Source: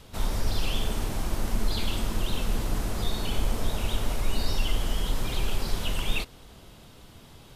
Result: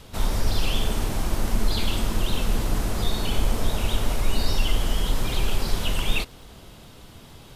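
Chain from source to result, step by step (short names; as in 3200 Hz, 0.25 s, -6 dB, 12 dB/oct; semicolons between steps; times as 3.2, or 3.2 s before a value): crackle 10/s -45 dBFS; gain +4 dB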